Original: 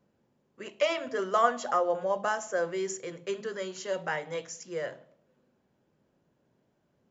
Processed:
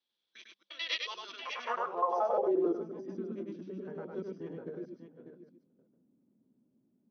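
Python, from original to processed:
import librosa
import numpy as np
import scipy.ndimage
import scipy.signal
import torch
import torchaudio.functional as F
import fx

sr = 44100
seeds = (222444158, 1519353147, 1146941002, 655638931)

p1 = fx.block_reorder(x, sr, ms=88.0, group=4)
p2 = fx.peak_eq(p1, sr, hz=4000.0, db=11.0, octaves=0.2)
p3 = fx.hum_notches(p2, sr, base_hz=50, count=4)
p4 = p3 + fx.echo_multitap(p3, sr, ms=(101, 595, 740), db=(-3.0, -10.5, -17.5), dry=0)
p5 = fx.formant_shift(p4, sr, semitones=-3)
p6 = fx.filter_sweep_bandpass(p5, sr, from_hz=3800.0, to_hz=240.0, start_s=1.29, end_s=2.82, q=3.3)
y = F.gain(torch.from_numpy(p6), 4.0).numpy()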